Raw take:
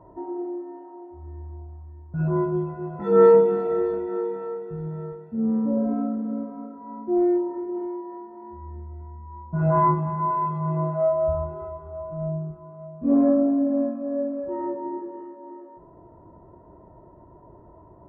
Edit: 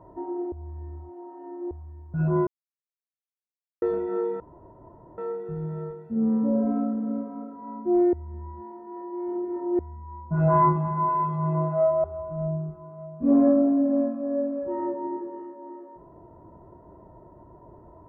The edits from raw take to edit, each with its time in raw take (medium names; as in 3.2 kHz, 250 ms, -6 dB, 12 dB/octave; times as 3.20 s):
0.52–1.71 s: reverse
2.47–3.82 s: mute
4.40 s: insert room tone 0.78 s
7.35–9.01 s: reverse
11.26–11.85 s: delete